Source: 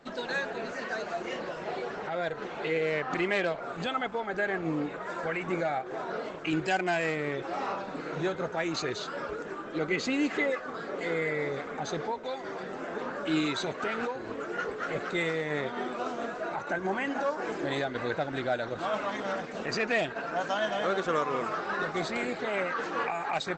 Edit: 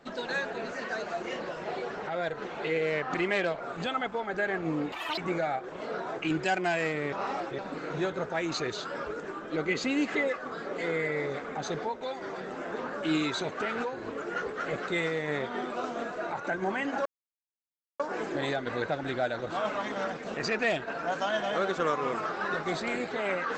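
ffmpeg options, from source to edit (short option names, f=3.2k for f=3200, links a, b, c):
-filter_complex "[0:a]asplit=8[a][b][c][d][e][f][g][h];[a]atrim=end=4.924[i];[b]atrim=start=4.92:end=5.4,asetpts=PTS-STARTPTS,asetrate=82908,aresample=44100[j];[c]atrim=start=5.396:end=5.922[k];[d]atrim=start=5.918:end=6.412,asetpts=PTS-STARTPTS,areverse[l];[e]atrim=start=6.408:end=7.352[m];[f]atrim=start=7.348:end=7.812,asetpts=PTS-STARTPTS,areverse[n];[g]atrim=start=7.808:end=17.28,asetpts=PTS-STARTPTS,afade=t=out:st=9.468:d=0.004:c=hsin,apad=pad_dur=0.94[o];[h]atrim=start=17.28,asetpts=PTS-STARTPTS,afade=t=in:d=0.004:c=hsin[p];[i][j]acrossfade=d=0.004:c1=hsin:c2=hsin[q];[q][k]acrossfade=d=0.004:c1=hsin:c2=hsin[r];[r][l]acrossfade=d=0.004:c1=hsin:c2=hsin[s];[s][m]acrossfade=d=0.004:c1=hsin:c2=hsin[t];[t][n]acrossfade=d=0.004:c1=hsin:c2=hsin[u];[o][p]concat=n=2:v=0:a=1[v];[u][v]acrossfade=d=0.004:c1=hsin:c2=hsin"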